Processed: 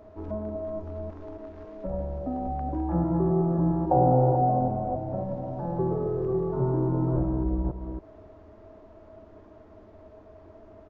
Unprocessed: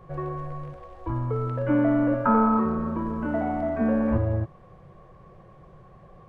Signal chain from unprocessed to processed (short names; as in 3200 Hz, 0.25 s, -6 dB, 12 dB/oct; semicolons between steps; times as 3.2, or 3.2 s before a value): reverse delay 0.159 s, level -5 dB; bell 1200 Hz +7.5 dB 2.9 oct; speed mistake 78 rpm record played at 45 rpm; downsampling 16000 Hz; mismatched tape noise reduction encoder only; gain -6.5 dB